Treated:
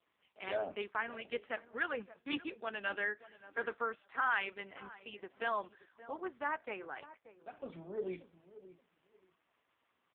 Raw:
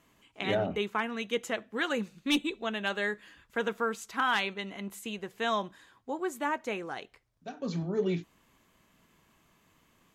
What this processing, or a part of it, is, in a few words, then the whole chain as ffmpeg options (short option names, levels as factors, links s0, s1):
telephone: -filter_complex "[0:a]asplit=3[s0][s1][s2];[s0]afade=t=out:st=6.21:d=0.02[s3];[s1]lowpass=6500,afade=t=in:st=6.21:d=0.02,afade=t=out:st=7.71:d=0.02[s4];[s2]afade=t=in:st=7.71:d=0.02[s5];[s3][s4][s5]amix=inputs=3:normalize=0,adynamicequalizer=threshold=0.00562:dfrequency=1600:dqfactor=3.2:tfrequency=1600:tqfactor=3.2:attack=5:release=100:ratio=0.375:range=2:mode=boostabove:tftype=bell,highpass=380,lowpass=3500,asplit=2[s6][s7];[s7]adelay=579,lowpass=f=1000:p=1,volume=0.188,asplit=2[s8][s9];[s9]adelay=579,lowpass=f=1000:p=1,volume=0.22[s10];[s6][s8][s10]amix=inputs=3:normalize=0,volume=0.562" -ar 8000 -c:a libopencore_amrnb -b:a 5150